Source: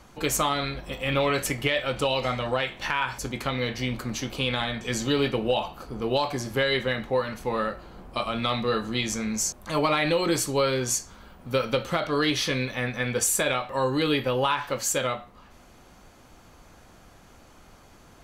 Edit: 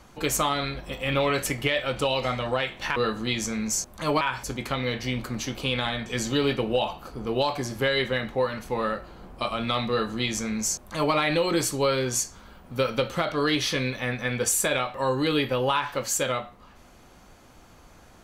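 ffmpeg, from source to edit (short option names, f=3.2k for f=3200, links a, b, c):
-filter_complex "[0:a]asplit=3[a][b][c];[a]atrim=end=2.962[d];[b]atrim=start=8.638:end=9.892[e];[c]atrim=start=2.958[f];[d][e]acrossfade=d=0.004:c1=hsin:c2=hsin[g];[g][f]acrossfade=d=0.004:c1=hsin:c2=hsin"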